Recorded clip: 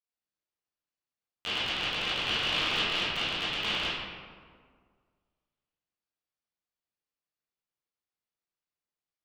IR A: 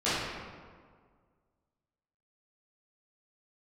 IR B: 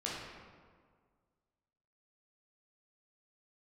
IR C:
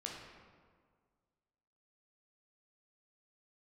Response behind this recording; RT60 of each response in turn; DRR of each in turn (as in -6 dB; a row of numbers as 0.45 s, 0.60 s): A; 1.8 s, 1.8 s, 1.8 s; -14.5 dB, -6.0 dB, -2.0 dB